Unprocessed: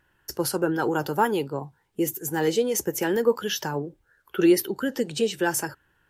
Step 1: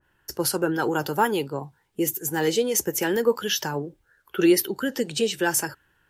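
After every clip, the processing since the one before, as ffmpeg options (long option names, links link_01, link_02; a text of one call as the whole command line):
ffmpeg -i in.wav -af "adynamicequalizer=threshold=0.0112:dfrequency=1600:dqfactor=0.7:tfrequency=1600:tqfactor=0.7:attack=5:release=100:ratio=0.375:range=2:mode=boostabove:tftype=highshelf" out.wav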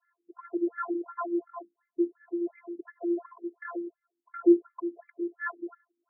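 ffmpeg -i in.wav -af "afftfilt=real='hypot(re,im)*cos(PI*b)':imag='0':win_size=512:overlap=0.75,afftfilt=real='re*between(b*sr/1024,260*pow(1700/260,0.5+0.5*sin(2*PI*2.8*pts/sr))/1.41,260*pow(1700/260,0.5+0.5*sin(2*PI*2.8*pts/sr))*1.41)':imag='im*between(b*sr/1024,260*pow(1700/260,0.5+0.5*sin(2*PI*2.8*pts/sr))/1.41,260*pow(1700/260,0.5+0.5*sin(2*PI*2.8*pts/sr))*1.41)':win_size=1024:overlap=0.75" out.wav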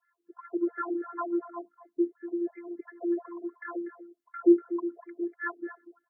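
ffmpeg -i in.wav -af "aecho=1:1:242:0.211" out.wav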